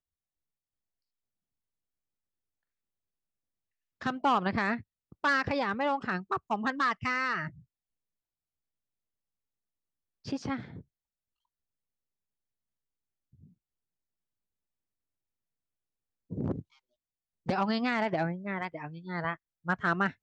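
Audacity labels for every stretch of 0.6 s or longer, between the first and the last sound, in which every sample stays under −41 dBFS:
7.480000	10.260000	silence
10.810000	16.310000	silence
16.610000	17.470000	silence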